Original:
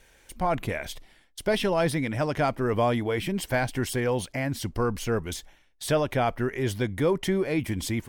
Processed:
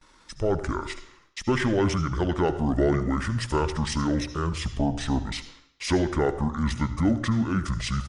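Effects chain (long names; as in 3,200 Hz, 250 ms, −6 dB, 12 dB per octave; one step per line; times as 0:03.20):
noise gate with hold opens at −49 dBFS
high-shelf EQ 2,500 Hz +2.5 dB
pitch shifter −9 semitones
on a send: convolution reverb RT60 0.70 s, pre-delay 61 ms, DRR 12 dB
on the sum: level +1 dB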